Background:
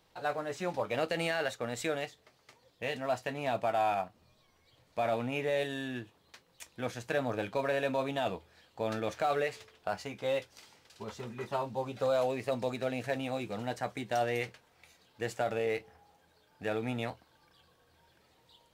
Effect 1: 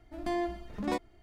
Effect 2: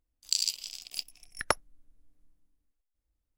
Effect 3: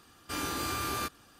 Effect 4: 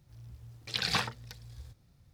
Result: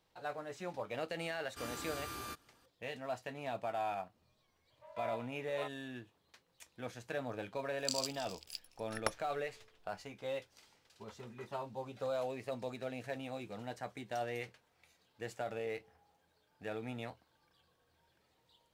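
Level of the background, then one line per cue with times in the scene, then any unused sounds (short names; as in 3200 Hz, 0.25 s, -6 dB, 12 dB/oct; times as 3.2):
background -8 dB
1.27 add 3 -11 dB
4.7 add 1 -12.5 dB + mistuned SSB +290 Hz 230–3400 Hz
7.56 add 2 -9.5 dB
not used: 4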